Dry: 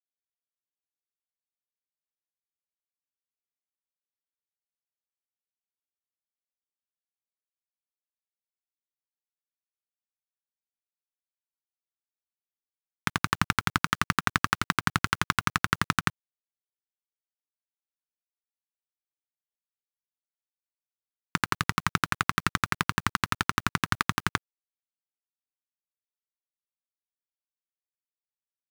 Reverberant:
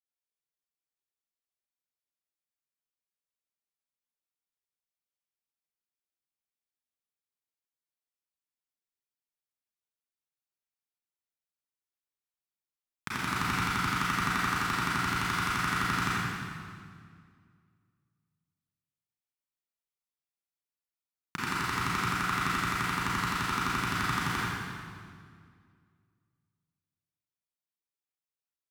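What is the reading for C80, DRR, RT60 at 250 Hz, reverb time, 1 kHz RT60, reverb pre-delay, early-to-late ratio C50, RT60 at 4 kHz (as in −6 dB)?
−2.5 dB, −9.5 dB, 2.5 s, 2.1 s, 2.0 s, 30 ms, −5.5 dB, 1.7 s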